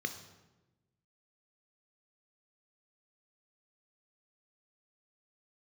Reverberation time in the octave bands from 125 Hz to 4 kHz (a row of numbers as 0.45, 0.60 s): 1.6, 1.5, 1.2, 1.0, 0.90, 0.75 s